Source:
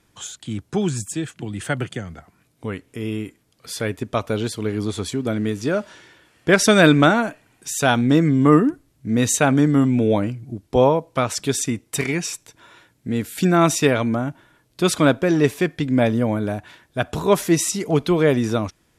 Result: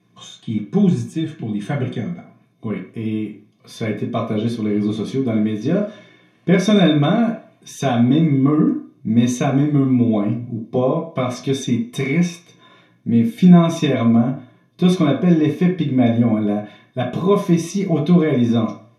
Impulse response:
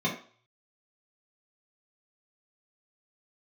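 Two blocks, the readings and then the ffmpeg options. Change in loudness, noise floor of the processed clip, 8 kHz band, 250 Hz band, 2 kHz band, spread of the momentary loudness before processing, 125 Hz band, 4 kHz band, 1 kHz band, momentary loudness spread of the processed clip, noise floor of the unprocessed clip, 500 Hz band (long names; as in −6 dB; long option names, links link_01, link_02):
+1.5 dB, −56 dBFS, −10.0 dB, +4.0 dB, −6.5 dB, 16 LU, +4.5 dB, −2.0 dB, −3.0 dB, 12 LU, −63 dBFS, −1.0 dB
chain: -filter_complex "[0:a]acompressor=threshold=-17dB:ratio=2.5[link_01];[1:a]atrim=start_sample=2205[link_02];[link_01][link_02]afir=irnorm=-1:irlink=0,volume=-10dB"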